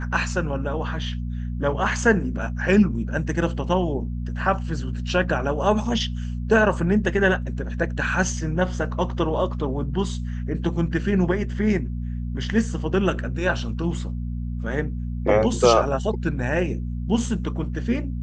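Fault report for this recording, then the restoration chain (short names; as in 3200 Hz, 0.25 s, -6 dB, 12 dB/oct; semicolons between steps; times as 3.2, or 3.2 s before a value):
hum 60 Hz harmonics 4 -28 dBFS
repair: de-hum 60 Hz, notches 4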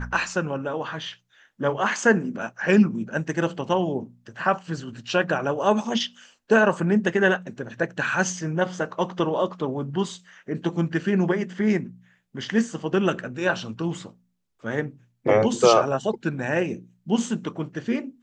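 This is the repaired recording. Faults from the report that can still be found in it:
none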